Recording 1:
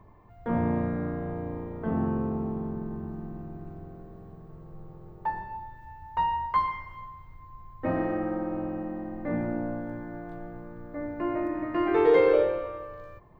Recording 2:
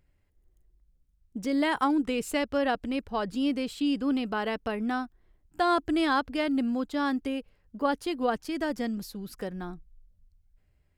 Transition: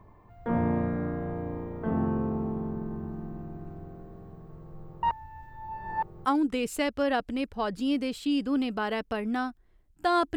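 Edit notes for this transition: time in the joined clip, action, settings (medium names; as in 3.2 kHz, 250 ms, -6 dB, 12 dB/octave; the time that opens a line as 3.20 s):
recording 1
5.03–6.25 s: reverse
6.25 s: go over to recording 2 from 1.80 s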